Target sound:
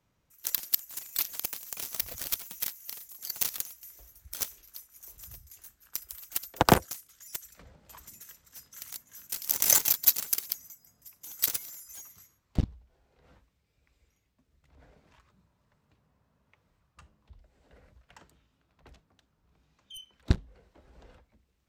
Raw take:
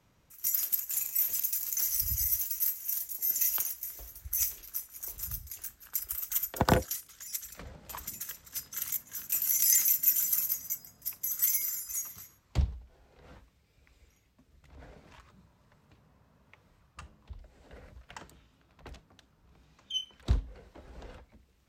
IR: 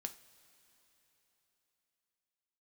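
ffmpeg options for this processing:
-filter_complex "[0:a]asettb=1/sr,asplit=3[link_01][link_02][link_03];[link_01]atrim=end=6.454[link_04];[link_02]atrim=start=6.45:end=7.46,asetpts=PTS-STARTPTS,afade=type=in:duration=0.004:curve=qsin,afade=type=out:start_time=1.006:duration=0.004:curve=qsin,highshelf=frequency=8300:gain=5.5[link_05];[link_03]atrim=start=7.456[link_06];[link_04][link_05]acrossfade=duration=0.004:curve1=hsin:curve2=qsin[link_07];[link_07][link_06]acrossfade=duration=0.004:curve1=qsin:curve2=hsin,asettb=1/sr,asplit=3[link_08][link_09][link_10];[link_08]atrim=end=10.594[link_11];[link_09]atrim=start=10.59:end=11.21,asetpts=PTS-STARTPTS,afade=type=in:duration=0.004:curve=qsin,afade=type=out:start_time=0.616:duration=0.004:curve=qsin,acompressor=threshold=-37dB:ratio=6[link_12];[link_10]atrim=start=11.206[link_13];[link_11][link_12]acrossfade=duration=0.004:curve1=hsin:curve2=qsin[link_14];[link_14][link_13]acrossfade=duration=0.004:curve1=qsin:curve2=hsin,aeval=exprs='0.335*(cos(1*acos(clip(val(0)/0.335,-1,1)))-cos(1*PI/2))+0.0596*(cos(7*acos(clip(val(0)/0.335,-1,1)))-cos(7*PI/2))':channel_layout=same,volume=5dB"

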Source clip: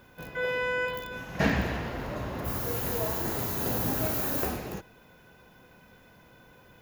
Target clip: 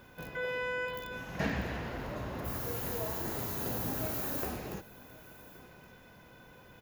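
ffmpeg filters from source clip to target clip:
ffmpeg -i in.wav -filter_complex "[0:a]acompressor=threshold=-43dB:ratio=1.5,asplit=2[link_01][link_02];[link_02]aecho=0:1:1121:0.1[link_03];[link_01][link_03]amix=inputs=2:normalize=0" out.wav

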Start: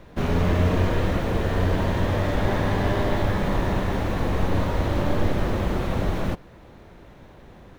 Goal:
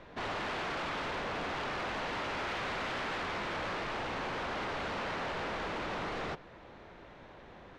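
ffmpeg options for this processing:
ffmpeg -i in.wav -filter_complex "[0:a]aeval=exprs='0.0473*(abs(mod(val(0)/0.0473+3,4)-2)-1)':channel_layout=same,lowpass=5800,asplit=2[link_01][link_02];[link_02]highpass=frequency=720:poles=1,volume=11dB,asoftclip=type=tanh:threshold=-23.5dB[link_03];[link_01][link_03]amix=inputs=2:normalize=0,lowpass=frequency=4000:poles=1,volume=-6dB,volume=-6dB" out.wav

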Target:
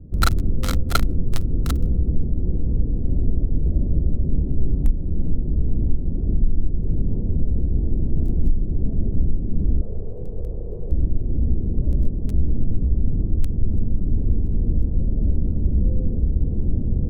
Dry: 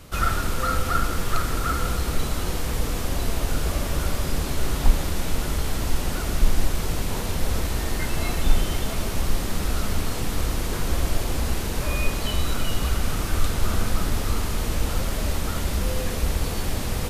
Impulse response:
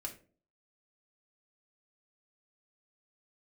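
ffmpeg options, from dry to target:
-filter_complex "[0:a]asettb=1/sr,asplit=3[link_01][link_02][link_03];[link_01]atrim=end=9.814[link_04];[link_02]atrim=start=9.81:end=10.92,asetpts=PTS-STARTPTS,afade=type=in:duration=0.004:curve=qsin,afade=type=out:start_time=1.106:duration=0.004:curve=qsin,lowshelf=frequency=360:width_type=q:width=3:gain=-8.5[link_05];[link_03]atrim=start=10.916[link_06];[link_04][link_05]acrossfade=duration=0.004:curve1=hsin:curve2=qsin[link_07];[link_07][link_06]acrossfade=duration=0.004:curve1=qsin:curve2=hsin,acrossover=split=360[link_08][link_09];[link_08]alimiter=limit=-14.5dB:level=0:latency=1:release=338[link_10];[link_09]acrusher=bits=2:mix=0:aa=0.5[link_11];[link_10][link_11]amix=inputs=2:normalize=0,volume=6.5dB"

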